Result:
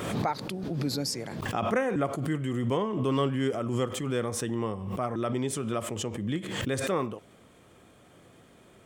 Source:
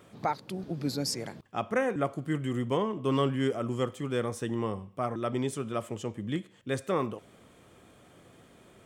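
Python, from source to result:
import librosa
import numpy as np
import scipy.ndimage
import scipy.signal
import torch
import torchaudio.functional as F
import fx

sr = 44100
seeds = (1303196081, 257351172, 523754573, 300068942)

y = fx.pre_swell(x, sr, db_per_s=38.0)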